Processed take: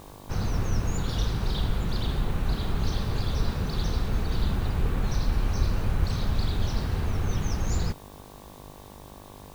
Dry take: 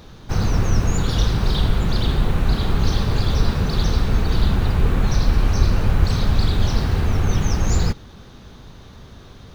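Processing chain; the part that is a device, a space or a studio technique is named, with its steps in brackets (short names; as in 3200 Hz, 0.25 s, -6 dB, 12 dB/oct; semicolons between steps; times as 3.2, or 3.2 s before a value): video cassette with head-switching buzz (buzz 50 Hz, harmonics 23, -40 dBFS -1 dB/oct; white noise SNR 30 dB); gain -8.5 dB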